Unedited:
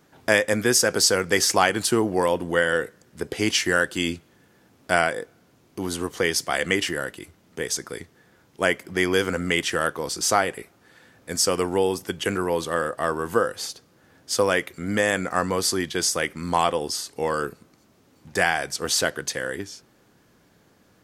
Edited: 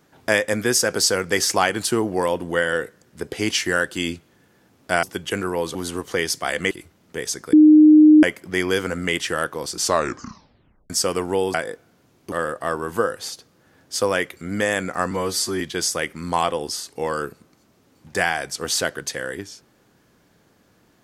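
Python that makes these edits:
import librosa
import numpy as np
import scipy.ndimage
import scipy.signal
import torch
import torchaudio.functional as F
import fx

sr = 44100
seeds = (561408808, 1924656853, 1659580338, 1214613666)

y = fx.edit(x, sr, fx.swap(start_s=5.03, length_s=0.78, other_s=11.97, other_length_s=0.72),
    fx.cut(start_s=6.77, length_s=0.37),
    fx.bleep(start_s=7.96, length_s=0.7, hz=306.0, db=-6.5),
    fx.tape_stop(start_s=10.21, length_s=1.12),
    fx.stretch_span(start_s=15.48, length_s=0.33, factor=1.5), tone=tone)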